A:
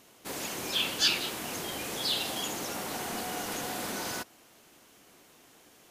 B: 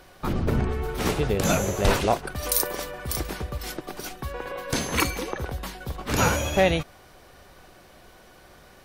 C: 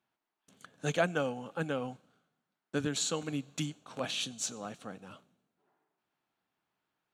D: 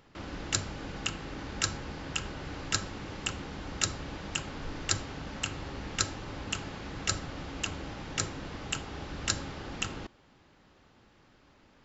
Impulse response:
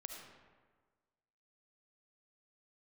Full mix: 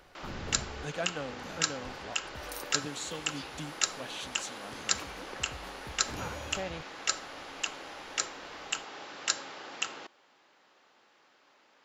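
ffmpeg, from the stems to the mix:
-filter_complex "[0:a]equalizer=f=10000:w=6.9:g=14,acompressor=mode=upward:threshold=0.0224:ratio=2.5,adelay=2350,volume=0.141[s0];[1:a]volume=0.355[s1];[2:a]volume=0.473,asplit=2[s2][s3];[3:a]highpass=530,volume=1.12[s4];[s3]apad=whole_len=389895[s5];[s1][s5]sidechaincompress=threshold=0.00251:ratio=8:attack=16:release=541[s6];[s0][s6]amix=inputs=2:normalize=0,highshelf=f=8300:g=-9,acompressor=threshold=0.00316:ratio=1.5,volume=1[s7];[s2][s4][s7]amix=inputs=3:normalize=0"

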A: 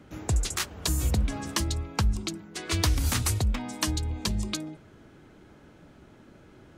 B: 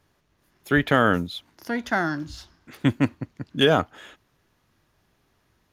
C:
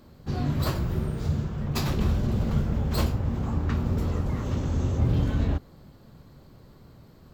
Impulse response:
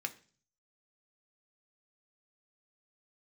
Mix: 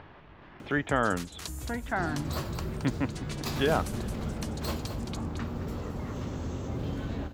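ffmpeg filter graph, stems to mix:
-filter_complex "[0:a]acompressor=threshold=0.0355:ratio=6,adelay=600,volume=0.335,asplit=2[s0][s1];[s1]volume=0.501[s2];[1:a]lowpass=f=3100:w=0.5412,lowpass=f=3100:w=1.3066,equalizer=f=880:w=1.5:g=4.5,volume=0.355[s3];[2:a]acrossover=split=200[s4][s5];[s4]acompressor=threshold=0.0224:ratio=3[s6];[s6][s5]amix=inputs=2:normalize=0,adelay=1700,volume=0.562,asplit=2[s7][s8];[s8]volume=0.316[s9];[s2][s9]amix=inputs=2:normalize=0,aecho=0:1:220:1[s10];[s0][s3][s7][s10]amix=inputs=4:normalize=0,acompressor=mode=upward:threshold=0.0282:ratio=2.5"

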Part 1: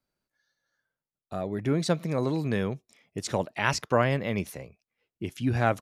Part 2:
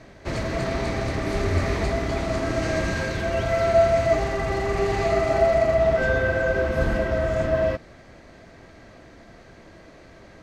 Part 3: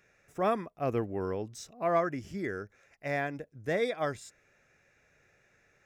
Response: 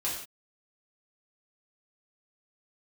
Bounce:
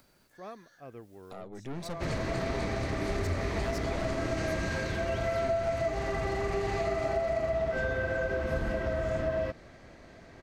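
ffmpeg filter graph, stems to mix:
-filter_complex "[0:a]acompressor=mode=upward:threshold=0.0355:ratio=2.5,aeval=exprs='(tanh(25.1*val(0)+0.8)-tanh(0.8))/25.1':c=same,volume=0.473[s0];[1:a]adelay=1750,volume=0.596[s1];[2:a]volume=0.158[s2];[s0][s1][s2]amix=inputs=3:normalize=0,acompressor=threshold=0.0447:ratio=5"

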